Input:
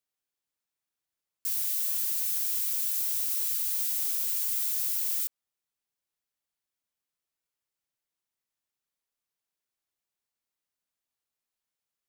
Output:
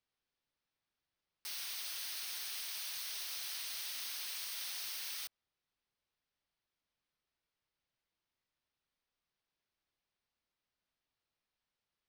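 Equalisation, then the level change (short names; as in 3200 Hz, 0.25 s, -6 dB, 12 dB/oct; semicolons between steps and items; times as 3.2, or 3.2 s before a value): polynomial smoothing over 15 samples; low shelf 120 Hz +6.5 dB; +2.5 dB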